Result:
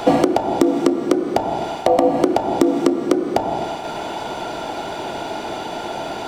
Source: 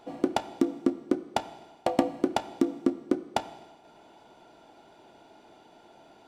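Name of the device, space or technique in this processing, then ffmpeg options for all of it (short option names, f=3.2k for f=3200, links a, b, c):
mastering chain: -filter_complex "[0:a]equalizer=f=260:t=o:w=1.2:g=-3,acrossover=split=270|960[a][b][c];[a]acompressor=threshold=-42dB:ratio=4[d];[b]acompressor=threshold=-28dB:ratio=4[e];[c]acompressor=threshold=-51dB:ratio=4[f];[d][e][f]amix=inputs=3:normalize=0,acompressor=threshold=-38dB:ratio=2,alimiter=level_in=29.5dB:limit=-1dB:release=50:level=0:latency=1,volume=-1dB"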